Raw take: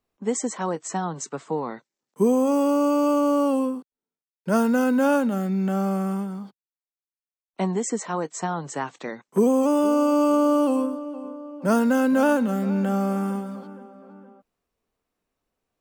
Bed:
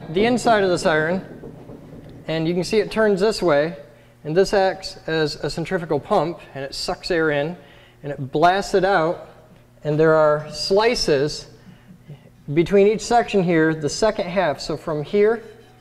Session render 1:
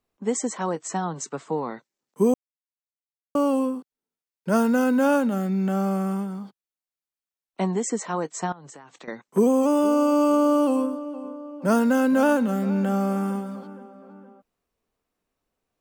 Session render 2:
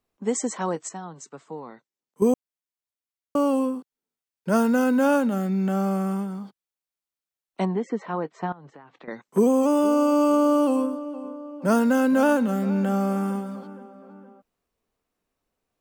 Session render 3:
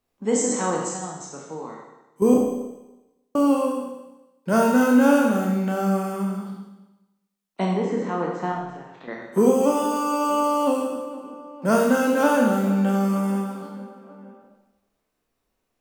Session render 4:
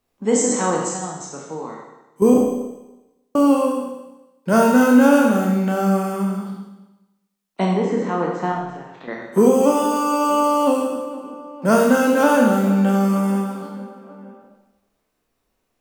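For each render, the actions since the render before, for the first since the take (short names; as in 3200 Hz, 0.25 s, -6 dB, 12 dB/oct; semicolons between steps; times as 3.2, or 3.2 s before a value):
2.34–3.35 mute; 8.52–9.08 compressor 20:1, threshold -40 dBFS
0.89–2.22 gain -9.5 dB; 7.65–9.11 air absorption 330 m
spectral trails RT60 0.41 s; Schroeder reverb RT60 1 s, combs from 25 ms, DRR 0.5 dB
gain +4 dB; limiter -3 dBFS, peak gain reduction 2 dB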